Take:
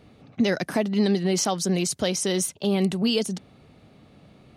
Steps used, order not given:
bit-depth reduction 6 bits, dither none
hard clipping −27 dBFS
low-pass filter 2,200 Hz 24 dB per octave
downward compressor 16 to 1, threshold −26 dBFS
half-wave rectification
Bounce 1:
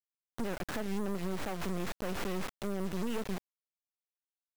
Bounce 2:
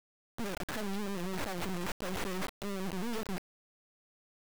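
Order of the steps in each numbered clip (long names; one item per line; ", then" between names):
half-wave rectification, then low-pass filter, then bit-depth reduction, then downward compressor, then hard clipping
half-wave rectification, then low-pass filter, then downward compressor, then hard clipping, then bit-depth reduction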